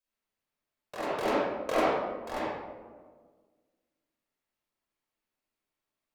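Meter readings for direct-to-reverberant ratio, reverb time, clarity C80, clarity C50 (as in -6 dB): -9.0 dB, 1.6 s, 0.0 dB, -5.5 dB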